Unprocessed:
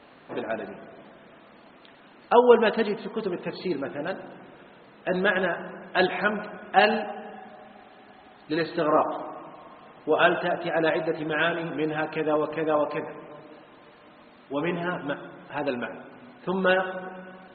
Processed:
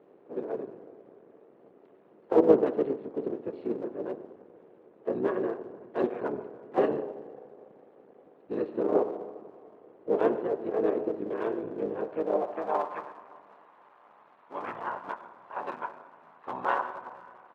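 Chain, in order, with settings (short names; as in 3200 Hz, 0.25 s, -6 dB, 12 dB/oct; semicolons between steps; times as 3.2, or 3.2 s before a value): cycle switcher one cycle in 3, muted; harmoniser -7 st 0 dB, +3 st -16 dB; band-pass sweep 410 Hz -> 1000 Hz, 11.99–12.92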